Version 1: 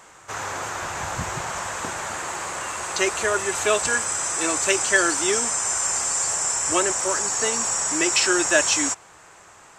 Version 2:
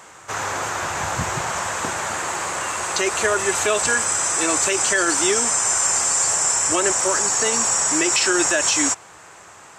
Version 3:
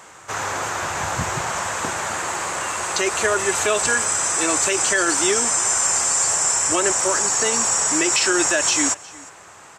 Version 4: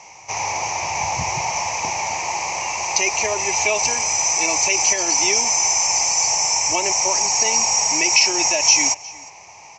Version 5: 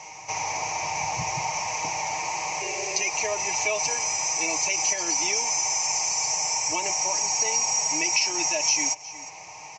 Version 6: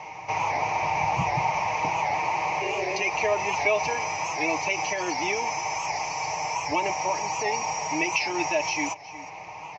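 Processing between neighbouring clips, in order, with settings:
high-pass 61 Hz; peak limiter -13 dBFS, peak gain reduction 9 dB; trim +4.5 dB
delay 360 ms -22 dB
FFT filter 130 Hz 0 dB, 280 Hz -6 dB, 530 Hz -3 dB, 890 Hz +9 dB, 1.5 kHz -22 dB, 2.3 kHz +12 dB, 3.5 kHz -7 dB, 5.9 kHz +14 dB, 8.9 kHz -25 dB; trim -1.5 dB
spectral replace 2.64–3.01 s, 380–1500 Hz after; comb 6.5 ms, depth 54%; compression 1.5:1, threshold -37 dBFS, peak gain reduction 10 dB
distance through air 310 m; warped record 78 rpm, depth 100 cents; trim +6 dB

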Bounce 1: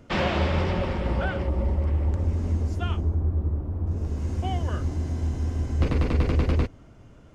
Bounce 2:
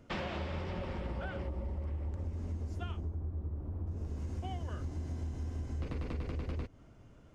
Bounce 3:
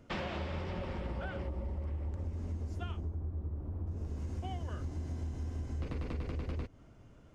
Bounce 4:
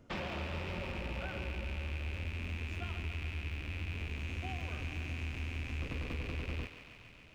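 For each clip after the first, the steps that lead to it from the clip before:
compression, threshold -27 dBFS, peak gain reduction 9.5 dB; trim -7.5 dB
no audible change
rattle on loud lows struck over -48 dBFS, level -31 dBFS; on a send: thinning echo 140 ms, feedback 82%, high-pass 480 Hz, level -9 dB; on the sum: trim -2 dB

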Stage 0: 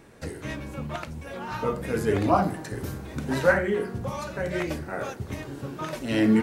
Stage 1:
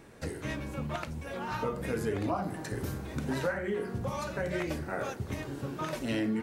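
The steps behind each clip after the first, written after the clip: compression 6:1, threshold -27 dBFS, peak gain reduction 12.5 dB; trim -1.5 dB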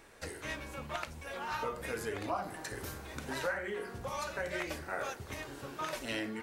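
peaking EQ 160 Hz -14 dB 2.8 oct; trim +1 dB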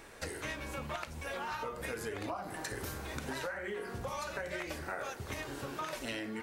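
compression, threshold -41 dBFS, peak gain reduction 11 dB; trim +5 dB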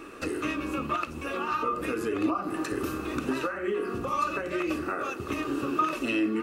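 small resonant body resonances 310/1200/2600 Hz, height 18 dB, ringing for 25 ms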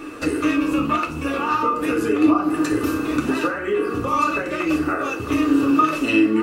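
FDN reverb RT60 0.38 s, low-frequency decay 1.25×, high-frequency decay 0.85×, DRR 2.5 dB; trim +6 dB

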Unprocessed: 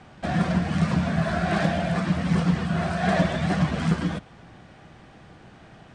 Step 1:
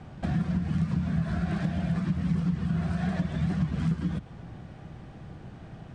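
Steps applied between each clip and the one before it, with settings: dynamic bell 620 Hz, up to -7 dB, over -40 dBFS, Q 1.4; compression, threshold -30 dBFS, peak gain reduction 13 dB; FFT filter 150 Hz 0 dB, 210 Hz -4 dB, 1.9 kHz -12 dB; trim +7.5 dB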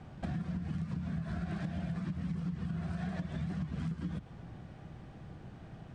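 compression, threshold -28 dBFS, peak gain reduction 6.5 dB; trim -5 dB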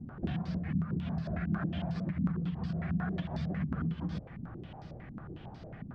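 step-sequenced low-pass 11 Hz 240–4900 Hz; trim +1.5 dB

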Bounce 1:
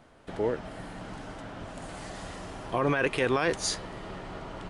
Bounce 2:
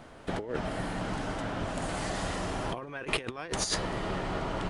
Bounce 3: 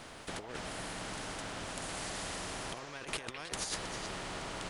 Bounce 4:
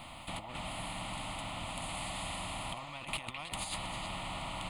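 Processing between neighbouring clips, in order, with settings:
compressor with a negative ratio -33 dBFS, ratio -0.5; trim +3 dB
repeats whose band climbs or falls 106 ms, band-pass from 700 Hz, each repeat 1.4 oct, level -7.5 dB; spectrum-flattening compressor 2:1; trim -6.5 dB
static phaser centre 1.6 kHz, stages 6; in parallel at -3 dB: saturation -37 dBFS, distortion -16 dB

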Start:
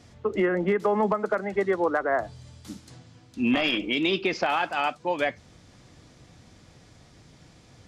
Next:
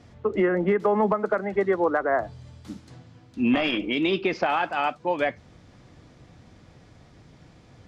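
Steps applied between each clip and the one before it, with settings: treble shelf 4.1 kHz -12 dB; trim +2 dB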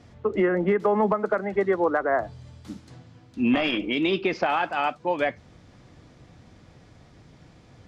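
no audible change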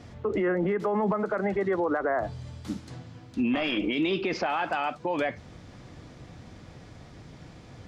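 peak limiter -23.5 dBFS, peak gain reduction 11 dB; trim +4.5 dB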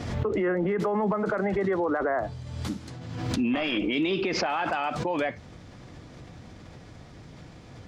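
swell ahead of each attack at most 42 dB/s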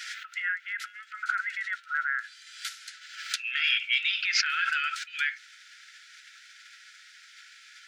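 brick-wall FIR high-pass 1.3 kHz; trim +6.5 dB

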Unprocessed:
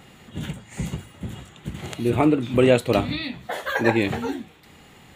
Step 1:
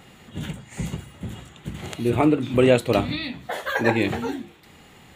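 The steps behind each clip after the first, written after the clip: de-hum 69.22 Hz, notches 5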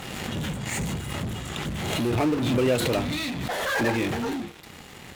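in parallel at -9 dB: fuzz box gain 40 dB, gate -50 dBFS; on the sum: swell ahead of each attack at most 25 dB/s; trim -9 dB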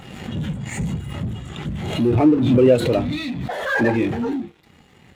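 spectral contrast expander 1.5:1; trim +8 dB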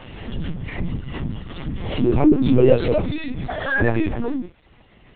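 LPC vocoder at 8 kHz pitch kept

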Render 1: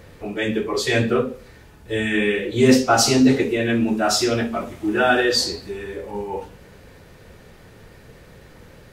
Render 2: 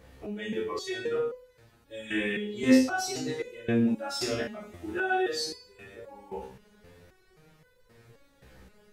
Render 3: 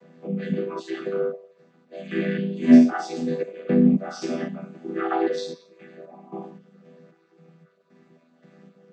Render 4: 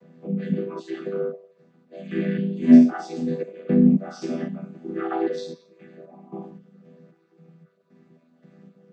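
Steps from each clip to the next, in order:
Schroeder reverb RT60 0.32 s, combs from 32 ms, DRR 8.5 dB; resonator arpeggio 3.8 Hz 65–500 Hz; trim -1 dB
vocoder on a held chord minor triad, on E3; trim +8 dB
bass shelf 320 Hz +9.5 dB; trim -5 dB

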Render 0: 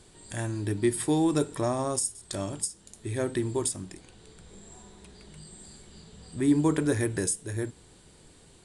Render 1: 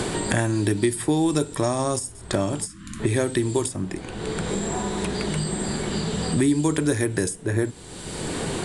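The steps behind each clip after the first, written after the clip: time-frequency box 2.66–3.00 s, 340–1000 Hz -28 dB; three bands compressed up and down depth 100%; trim +5.5 dB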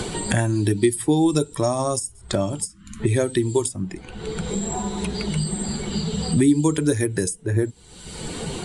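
expander on every frequency bin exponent 1.5; dynamic bell 1.6 kHz, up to -4 dB, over -45 dBFS, Q 1; trim +5 dB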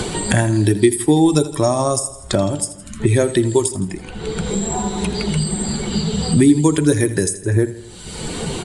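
feedback delay 82 ms, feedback 57%, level -15 dB; trim +5 dB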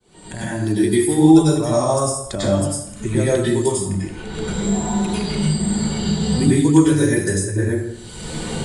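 fade-in on the opening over 0.91 s; plate-style reverb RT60 0.65 s, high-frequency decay 0.65×, pre-delay 85 ms, DRR -8 dB; trim -9.5 dB

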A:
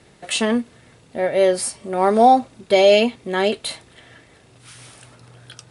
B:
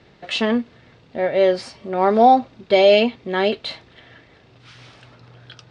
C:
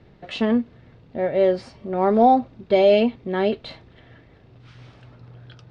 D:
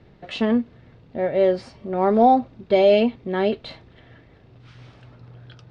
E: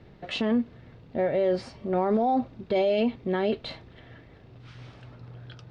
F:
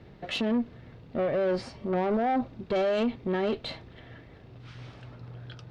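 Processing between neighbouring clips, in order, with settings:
low-pass 4.9 kHz 24 dB/octave
tilt EQ -2.5 dB/octave; trim -4.5 dB
no audible change
peak limiter -16.5 dBFS, peak gain reduction 11.5 dB
valve stage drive 23 dB, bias 0.25; trim +1.5 dB

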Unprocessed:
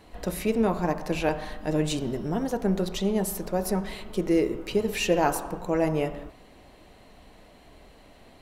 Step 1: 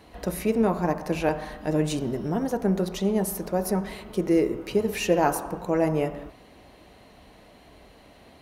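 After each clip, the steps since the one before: high-pass 46 Hz; band-stop 7.6 kHz, Q 9.6; dynamic bell 3.5 kHz, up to -5 dB, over -49 dBFS, Q 1.2; trim +1.5 dB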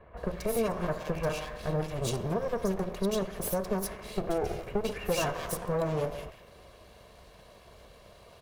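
comb filter that takes the minimum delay 1.8 ms; compression 3:1, threshold -27 dBFS, peak gain reduction 7 dB; bands offset in time lows, highs 170 ms, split 2.1 kHz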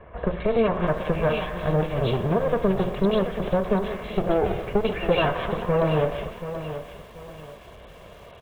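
resampled via 8 kHz; bit-crushed delay 732 ms, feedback 35%, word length 9-bit, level -10.5 dB; trim +8 dB

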